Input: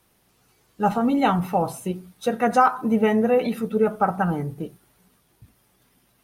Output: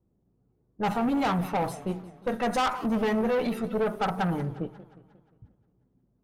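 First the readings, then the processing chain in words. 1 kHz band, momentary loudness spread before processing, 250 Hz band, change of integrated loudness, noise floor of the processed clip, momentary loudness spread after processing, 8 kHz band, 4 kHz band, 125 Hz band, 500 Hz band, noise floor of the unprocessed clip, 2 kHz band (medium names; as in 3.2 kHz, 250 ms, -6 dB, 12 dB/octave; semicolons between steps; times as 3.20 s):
-7.0 dB, 12 LU, -5.5 dB, -6.0 dB, -71 dBFS, 8 LU, -4.0 dB, +0.5 dB, -4.0 dB, -6.0 dB, -64 dBFS, -4.5 dB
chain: level-controlled noise filter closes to 320 Hz, open at -20 dBFS; valve stage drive 22 dB, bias 0.45; modulated delay 178 ms, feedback 53%, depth 206 cents, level -17.5 dB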